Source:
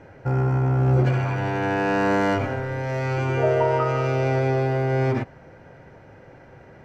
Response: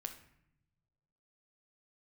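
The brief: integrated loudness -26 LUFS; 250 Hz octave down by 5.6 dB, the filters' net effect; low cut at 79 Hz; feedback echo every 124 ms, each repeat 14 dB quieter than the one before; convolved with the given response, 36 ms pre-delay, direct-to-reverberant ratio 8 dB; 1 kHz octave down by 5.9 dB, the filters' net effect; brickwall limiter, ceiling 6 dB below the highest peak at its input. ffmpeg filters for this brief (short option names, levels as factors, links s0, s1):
-filter_complex "[0:a]highpass=79,equalizer=f=250:t=o:g=-8.5,equalizer=f=1000:t=o:g=-7.5,alimiter=limit=0.119:level=0:latency=1,aecho=1:1:124|248:0.2|0.0399,asplit=2[s0][s1];[1:a]atrim=start_sample=2205,adelay=36[s2];[s1][s2]afir=irnorm=-1:irlink=0,volume=0.531[s3];[s0][s3]amix=inputs=2:normalize=0,volume=1.12"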